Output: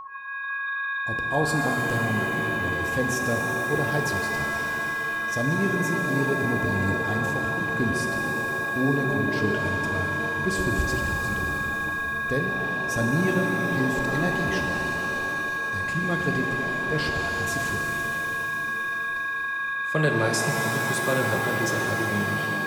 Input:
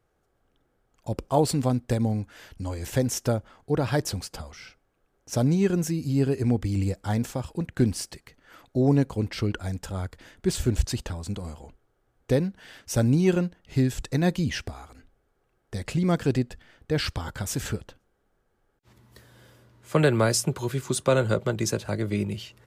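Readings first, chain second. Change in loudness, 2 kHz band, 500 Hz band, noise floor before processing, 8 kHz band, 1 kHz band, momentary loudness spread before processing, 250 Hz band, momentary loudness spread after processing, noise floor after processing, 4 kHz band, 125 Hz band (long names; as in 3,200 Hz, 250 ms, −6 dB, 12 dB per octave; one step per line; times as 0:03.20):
+1.5 dB, +17.0 dB, 0.0 dB, −72 dBFS, −1.5 dB, +7.5 dB, 13 LU, −1.0 dB, 4 LU, −29 dBFS, +1.0 dB, −3.0 dB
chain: steady tone 1,100 Hz −29 dBFS
flanger 1.1 Hz, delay 1.2 ms, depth 4.5 ms, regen +79%
reverb with rising layers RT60 3.4 s, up +7 semitones, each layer −2 dB, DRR 2 dB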